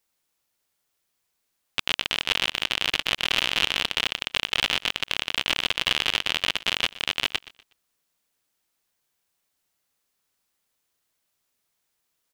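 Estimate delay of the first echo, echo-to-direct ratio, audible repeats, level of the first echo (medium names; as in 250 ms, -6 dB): 122 ms, -18.5 dB, 2, -19.0 dB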